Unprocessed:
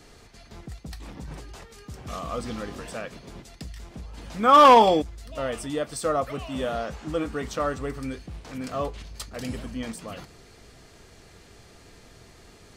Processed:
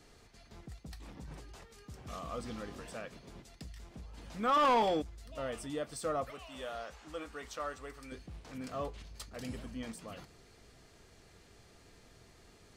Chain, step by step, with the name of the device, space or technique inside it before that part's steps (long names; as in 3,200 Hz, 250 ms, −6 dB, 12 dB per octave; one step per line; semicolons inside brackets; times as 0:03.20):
0:06.30–0:08.12: parametric band 150 Hz −14.5 dB 2.7 octaves
saturation between pre-emphasis and de-emphasis (high-shelf EQ 3,400 Hz +11.5 dB; soft clipping −14 dBFS, distortion −10 dB; high-shelf EQ 3,400 Hz −11.5 dB)
level −9 dB